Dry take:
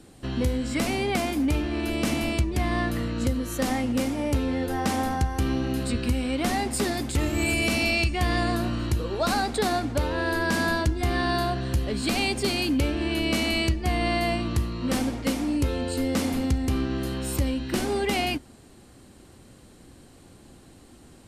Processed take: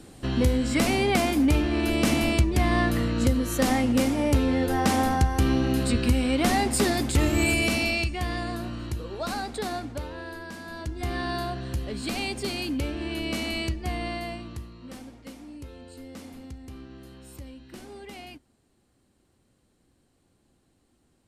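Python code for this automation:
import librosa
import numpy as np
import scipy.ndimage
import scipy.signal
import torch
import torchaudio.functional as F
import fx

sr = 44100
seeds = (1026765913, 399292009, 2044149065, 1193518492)

y = fx.gain(x, sr, db=fx.line((7.34, 3.0), (8.41, -6.5), (9.81, -6.5), (10.64, -16.5), (11.02, -5.0), (13.89, -5.0), (14.99, -17.0)))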